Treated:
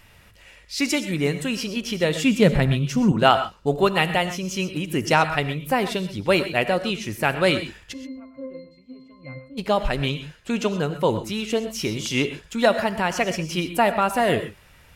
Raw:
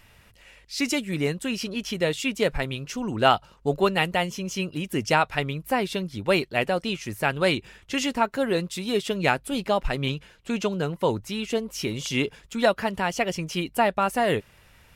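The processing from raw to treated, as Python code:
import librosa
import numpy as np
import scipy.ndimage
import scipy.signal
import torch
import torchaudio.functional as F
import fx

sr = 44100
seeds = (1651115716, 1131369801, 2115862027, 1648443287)

y = fx.peak_eq(x, sr, hz=160.0, db=13.5, octaves=1.6, at=(2.23, 3.12))
y = fx.octave_resonator(y, sr, note='C', decay_s=0.48, at=(7.92, 9.57), fade=0.02)
y = fx.rev_gated(y, sr, seeds[0], gate_ms=150, shape='rising', drr_db=10.0)
y = y * librosa.db_to_amplitude(2.5)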